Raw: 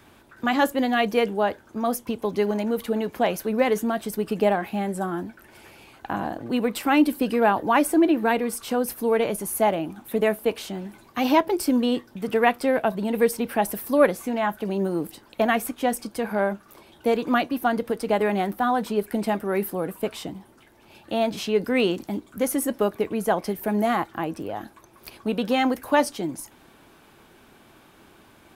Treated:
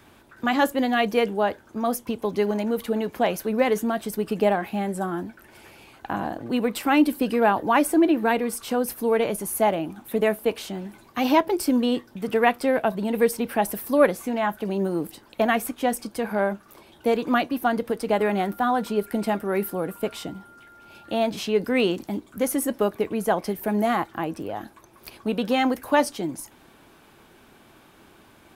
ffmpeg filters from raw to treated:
ffmpeg -i in.wav -filter_complex "[0:a]asettb=1/sr,asplit=3[link_01][link_02][link_03];[link_01]atrim=end=18.174[link_04];[link_02]atrim=start=18.17:end=21.16,asetpts=PTS-STARTPTS,afade=type=in:duration=0.004:curve=qsin,afade=type=out:start_time=2.986:duration=0.004:curve=qsin,aeval=exprs='val(0)+0.00398*sin(2*PI*1400*n/s)':channel_layout=same[link_05];[link_03]atrim=start=21.156[link_06];[link_04][link_05]acrossfade=duration=0.004:curve1=hsin:curve2=qsin[link_07];[link_07][link_06]acrossfade=duration=0.004:curve1=qsin:curve2=hsin" out.wav

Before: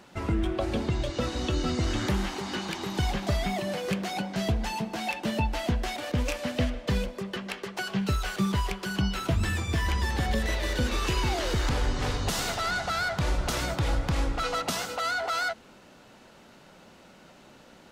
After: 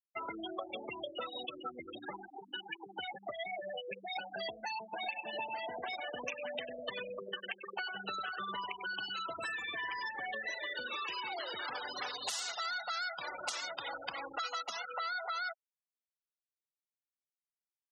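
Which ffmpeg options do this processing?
ffmpeg -i in.wav -filter_complex "[0:a]asettb=1/sr,asplit=3[link_01][link_02][link_03];[link_01]atrim=end=1.454[link_04];[link_02]atrim=start=1.45:end=4.16,asetpts=PTS-STARTPTS,afade=type=in:duration=0.004:curve=qsin,afade=type=out:start_time=2.706:duration=0.004:curve=qsin,flanger=delay=5.9:depth=6:regen=54:speed=1.5:shape=sinusoidal[link_05];[link_03]atrim=start=4.156[link_06];[link_04][link_05]acrossfade=duration=0.004:curve1=hsin:curve2=qsin[link_07];[link_07][link_06]acrossfade=duration=0.004:curve1=qsin:curve2=hsin,asettb=1/sr,asplit=3[link_08][link_09][link_10];[link_08]atrim=end=4.834[link_11];[link_09]atrim=start=4.83:end=10.08,asetpts=PTS-STARTPTS,afade=type=in:duration=0.004:curve=qsin,afade=type=out:start_time=5.246:duration=0.004:curve=qsin,asplit=2[link_12][link_13];[link_13]adelay=97,lowpass=frequency=2900:poles=1,volume=-4dB,asplit=2[link_14][link_15];[link_15]adelay=97,lowpass=frequency=2900:poles=1,volume=0.44,asplit=2[link_16][link_17];[link_17]adelay=97,lowpass=frequency=2900:poles=1,volume=0.44,asplit=2[link_18][link_19];[link_19]adelay=97,lowpass=frequency=2900:poles=1,volume=0.44,asplit=2[link_20][link_21];[link_21]adelay=97,lowpass=frequency=2900:poles=1,volume=0.44,asplit=2[link_22][link_23];[link_23]adelay=97,lowpass=frequency=2900:poles=1,volume=0.44[link_24];[link_12][link_14][link_16][link_18][link_20][link_22][link_24]amix=inputs=7:normalize=0,atrim=end_sample=231525[link_25];[link_10]atrim=start=10.076[link_26];[link_11][link_25]acrossfade=duration=0.004:curve1=hsin:curve2=qsin[link_27];[link_27][link_26]acrossfade=duration=0.004:curve1=qsin:curve2=hsin,asettb=1/sr,asplit=3[link_28][link_29][link_30];[link_28]atrim=end=11.754[link_31];[link_29]atrim=start=11.75:end=14.64,asetpts=PTS-STARTPTS,afade=type=in:duration=0.004:curve=qsin,afade=type=out:start_time=2.886:duration=0.004:curve=qsin,highshelf=frequency=3500:gain=7.5[link_32];[link_30]atrim=start=14.636[link_33];[link_31][link_32]acrossfade=duration=0.004:curve1=hsin:curve2=qsin[link_34];[link_34][link_33]acrossfade=duration=0.004:curve1=qsin:curve2=hsin,afftfilt=real='re*gte(hypot(re,im),0.0447)':imag='im*gte(hypot(re,im),0.0447)':win_size=1024:overlap=0.75,highpass=940,acompressor=threshold=-45dB:ratio=5,volume=7dB" out.wav

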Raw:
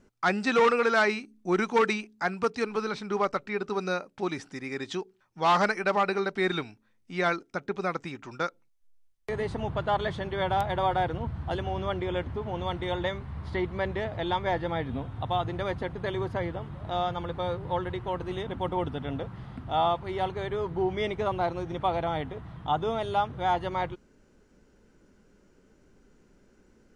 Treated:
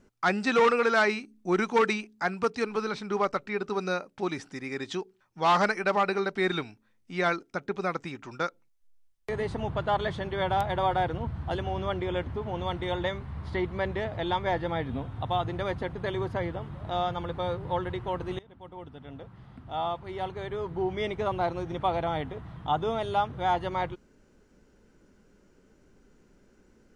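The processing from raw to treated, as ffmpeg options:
ffmpeg -i in.wav -filter_complex "[0:a]asplit=2[link_01][link_02];[link_01]atrim=end=18.39,asetpts=PTS-STARTPTS,afade=type=out:start_time=18.386:duration=0.004:curve=hsin:silence=0.0841395[link_03];[link_02]atrim=start=18.39,asetpts=PTS-STARTPTS,afade=type=in:duration=3.09:silence=0.0841395[link_04];[link_03][link_04]concat=n=2:v=0:a=1" out.wav

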